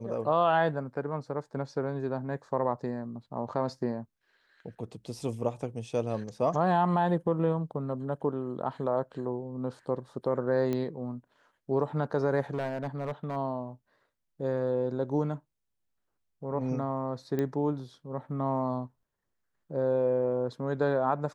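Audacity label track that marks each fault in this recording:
10.730000	10.730000	click −19 dBFS
12.540000	13.370000	clipping −27 dBFS
17.390000	17.390000	click −19 dBFS

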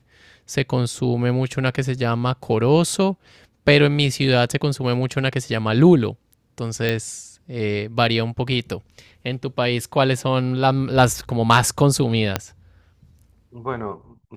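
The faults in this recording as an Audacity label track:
6.890000	6.890000	click
12.360000	12.360000	click −4 dBFS

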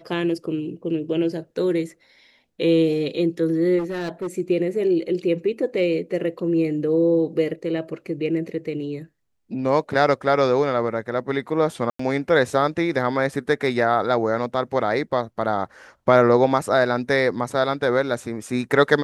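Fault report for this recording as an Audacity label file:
3.780000	4.280000	clipping −23.5 dBFS
11.900000	11.990000	drop-out 94 ms

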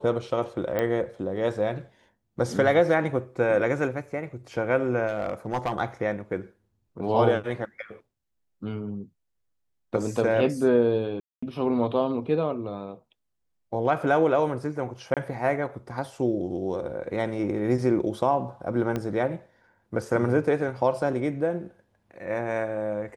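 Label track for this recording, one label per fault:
0.790000	0.790000	click −14 dBFS
5.070000	5.730000	clipping −21 dBFS
11.200000	11.430000	drop-out 225 ms
15.140000	15.170000	drop-out 27 ms
18.960000	18.960000	click −16 dBFS

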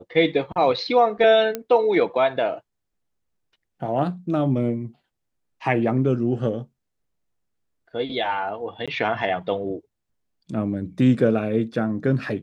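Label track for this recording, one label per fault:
1.550000	1.550000	click −12 dBFS
8.860000	8.880000	drop-out 16 ms

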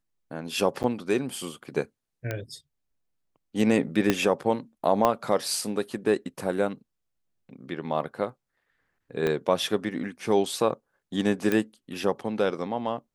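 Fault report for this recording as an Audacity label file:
0.830000	0.840000	drop-out 9 ms
2.310000	2.310000	click −16 dBFS
4.100000	4.100000	click −7 dBFS
5.050000	5.050000	click −9 dBFS
9.270000	9.270000	click −14 dBFS
11.520000	11.520000	click −12 dBFS

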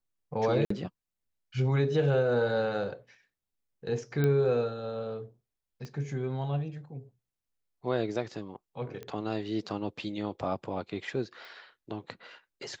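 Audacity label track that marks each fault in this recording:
0.650000	0.700000	drop-out 54 ms
4.240000	4.240000	click −17 dBFS
5.850000	5.850000	click −29 dBFS
9.030000	9.030000	click −27 dBFS
11.450000	11.450000	click

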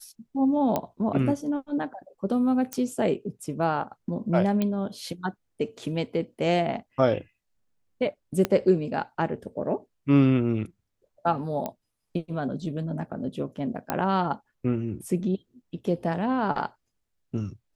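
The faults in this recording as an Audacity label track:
0.760000	0.760000	click −12 dBFS
2.730000	2.730000	click −15 dBFS
4.620000	4.620000	click −14 dBFS
8.450000	8.450000	click −10 dBFS
11.660000	11.660000	click −16 dBFS
13.900000	13.900000	click −11 dBFS

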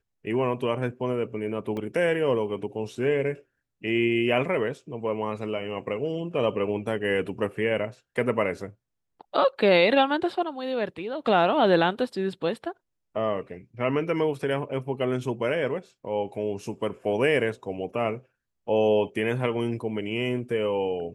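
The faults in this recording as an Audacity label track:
1.770000	1.770000	drop-out 2.7 ms

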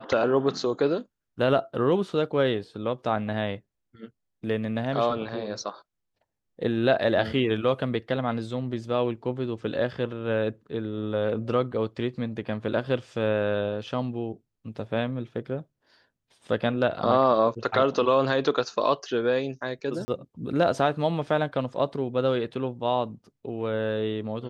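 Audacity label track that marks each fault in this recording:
20.050000	20.080000	drop-out 30 ms

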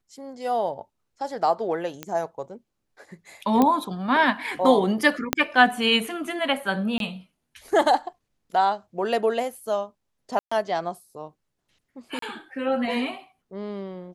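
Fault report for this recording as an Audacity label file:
2.030000	2.030000	click −16 dBFS
3.620000	3.620000	click −8 dBFS
5.330000	5.330000	click −3 dBFS
6.980000	7.000000	drop-out 22 ms
10.390000	10.520000	drop-out 125 ms
12.190000	12.220000	drop-out 33 ms

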